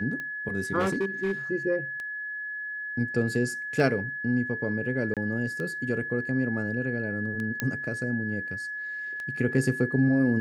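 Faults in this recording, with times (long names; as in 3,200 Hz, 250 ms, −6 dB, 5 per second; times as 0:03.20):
scratch tick 33 1/3 rpm −23 dBFS
whistle 1,700 Hz −32 dBFS
0:00.79–0:01.32: clipping −22 dBFS
0:05.14–0:05.17: drop-out 27 ms
0:07.60: click −12 dBFS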